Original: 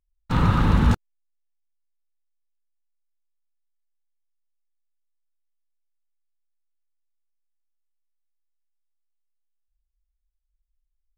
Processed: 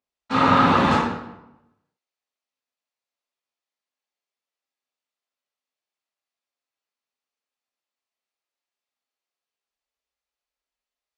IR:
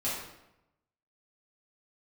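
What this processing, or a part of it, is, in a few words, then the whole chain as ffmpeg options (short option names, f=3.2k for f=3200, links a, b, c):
supermarket ceiling speaker: -filter_complex "[0:a]highpass=350,lowpass=5.8k[a];[1:a]atrim=start_sample=2205[b];[a][b]afir=irnorm=-1:irlink=0,volume=3.5dB"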